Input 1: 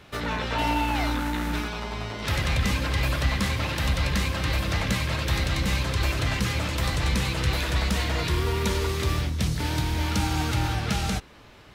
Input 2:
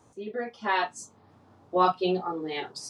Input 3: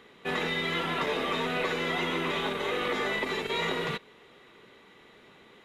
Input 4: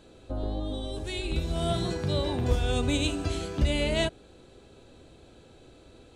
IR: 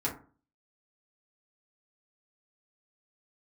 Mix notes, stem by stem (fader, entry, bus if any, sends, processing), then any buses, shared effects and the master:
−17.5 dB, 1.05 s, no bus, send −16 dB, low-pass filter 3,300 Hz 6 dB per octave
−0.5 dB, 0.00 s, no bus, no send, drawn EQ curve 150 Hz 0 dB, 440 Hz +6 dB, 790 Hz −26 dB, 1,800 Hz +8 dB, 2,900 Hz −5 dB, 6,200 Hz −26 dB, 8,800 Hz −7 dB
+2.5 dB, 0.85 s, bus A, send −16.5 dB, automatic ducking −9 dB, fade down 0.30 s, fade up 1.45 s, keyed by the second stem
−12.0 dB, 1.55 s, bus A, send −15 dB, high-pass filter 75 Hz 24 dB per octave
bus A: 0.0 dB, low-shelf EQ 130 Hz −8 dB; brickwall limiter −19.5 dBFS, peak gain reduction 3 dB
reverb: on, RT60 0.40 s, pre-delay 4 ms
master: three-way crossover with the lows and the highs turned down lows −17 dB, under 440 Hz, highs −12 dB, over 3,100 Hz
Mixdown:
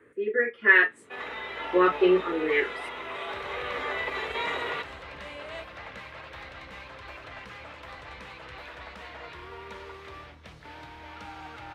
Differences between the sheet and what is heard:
stem 1 −17.5 dB → −10.0 dB
stem 2 −0.5 dB → +9.5 dB
reverb return −9.0 dB

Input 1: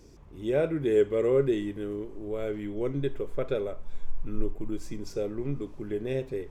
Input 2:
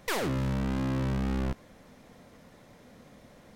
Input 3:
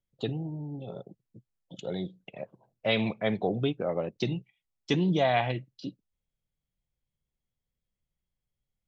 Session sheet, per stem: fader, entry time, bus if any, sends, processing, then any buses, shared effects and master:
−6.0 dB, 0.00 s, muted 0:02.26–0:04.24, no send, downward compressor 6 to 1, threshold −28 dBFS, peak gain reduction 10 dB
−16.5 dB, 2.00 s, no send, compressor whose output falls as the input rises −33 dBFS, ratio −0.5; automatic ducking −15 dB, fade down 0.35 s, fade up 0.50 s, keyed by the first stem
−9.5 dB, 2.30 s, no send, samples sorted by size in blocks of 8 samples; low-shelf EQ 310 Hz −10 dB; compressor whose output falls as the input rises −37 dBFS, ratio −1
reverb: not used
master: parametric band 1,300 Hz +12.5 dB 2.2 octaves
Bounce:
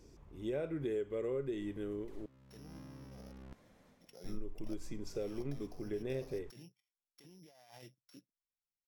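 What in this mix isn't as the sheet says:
stem 3 −9.5 dB → −19.5 dB
master: missing parametric band 1,300 Hz +12.5 dB 2.2 octaves

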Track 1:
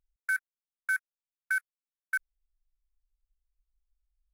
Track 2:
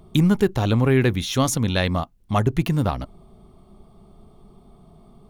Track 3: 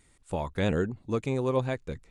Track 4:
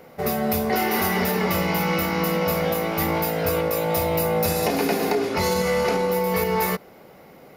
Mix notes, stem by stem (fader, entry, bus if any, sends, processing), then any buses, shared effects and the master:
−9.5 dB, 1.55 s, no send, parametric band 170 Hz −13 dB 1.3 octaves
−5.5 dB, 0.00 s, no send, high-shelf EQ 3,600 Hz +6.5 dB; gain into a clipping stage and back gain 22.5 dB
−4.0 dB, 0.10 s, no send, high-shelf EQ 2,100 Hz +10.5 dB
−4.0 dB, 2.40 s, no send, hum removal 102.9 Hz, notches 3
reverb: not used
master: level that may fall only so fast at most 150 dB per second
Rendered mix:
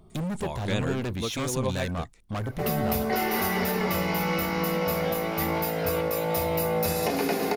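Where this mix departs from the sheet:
stem 1 −9.5 dB → −21.0 dB
stem 2: missing high-shelf EQ 3,600 Hz +6.5 dB
master: missing level that may fall only so fast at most 150 dB per second

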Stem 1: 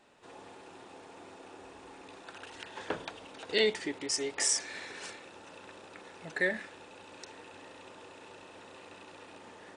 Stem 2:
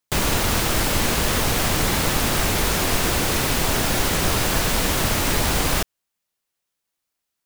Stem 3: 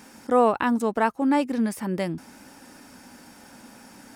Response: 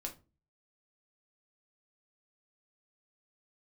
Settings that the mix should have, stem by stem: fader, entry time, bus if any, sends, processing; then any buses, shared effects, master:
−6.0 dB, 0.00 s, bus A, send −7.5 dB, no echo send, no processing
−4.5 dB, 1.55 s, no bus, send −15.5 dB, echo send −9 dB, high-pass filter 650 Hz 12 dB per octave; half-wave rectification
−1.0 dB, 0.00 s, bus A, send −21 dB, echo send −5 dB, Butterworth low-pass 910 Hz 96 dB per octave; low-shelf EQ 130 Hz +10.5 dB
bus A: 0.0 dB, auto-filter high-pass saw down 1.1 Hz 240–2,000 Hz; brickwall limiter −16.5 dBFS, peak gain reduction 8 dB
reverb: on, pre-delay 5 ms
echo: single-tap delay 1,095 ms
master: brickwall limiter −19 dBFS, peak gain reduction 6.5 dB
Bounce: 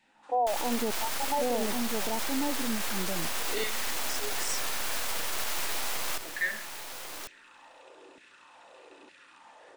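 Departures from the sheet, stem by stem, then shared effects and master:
stem 2: entry 1.55 s → 0.35 s
stem 3: missing low-shelf EQ 130 Hz +10.5 dB

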